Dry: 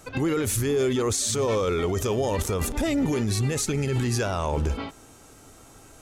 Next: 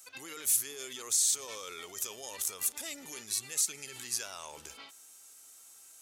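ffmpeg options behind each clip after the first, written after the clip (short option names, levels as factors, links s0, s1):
-af "aderivative"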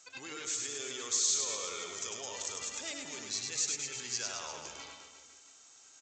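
-af "aecho=1:1:100|215|347.2|499.3|674.2:0.631|0.398|0.251|0.158|0.1,aresample=16000,aresample=44100"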